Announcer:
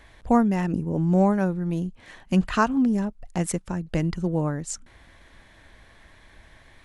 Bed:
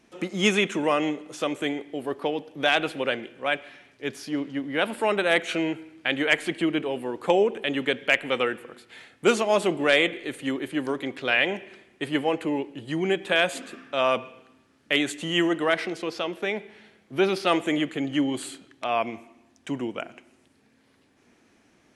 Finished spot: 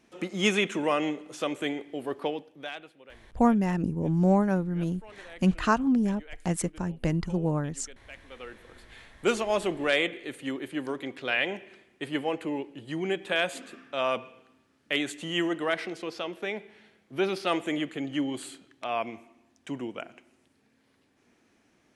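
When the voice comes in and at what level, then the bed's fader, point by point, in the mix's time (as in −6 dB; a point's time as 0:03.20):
3.10 s, −2.5 dB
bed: 0:02.28 −3 dB
0:02.97 −25.5 dB
0:08.20 −25.5 dB
0:08.85 −5 dB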